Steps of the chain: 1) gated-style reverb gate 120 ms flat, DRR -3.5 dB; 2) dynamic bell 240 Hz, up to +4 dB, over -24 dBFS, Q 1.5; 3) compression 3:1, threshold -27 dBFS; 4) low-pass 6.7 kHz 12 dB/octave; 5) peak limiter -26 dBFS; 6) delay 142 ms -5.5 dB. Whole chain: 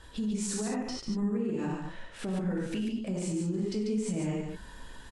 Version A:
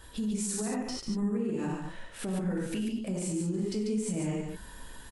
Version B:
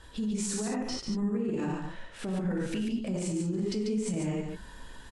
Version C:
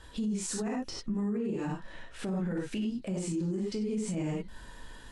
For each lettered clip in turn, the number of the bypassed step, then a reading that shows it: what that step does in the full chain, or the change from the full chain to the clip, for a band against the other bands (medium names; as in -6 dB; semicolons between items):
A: 4, 8 kHz band +2.5 dB; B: 3, mean gain reduction 8.5 dB; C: 6, momentary loudness spread change +1 LU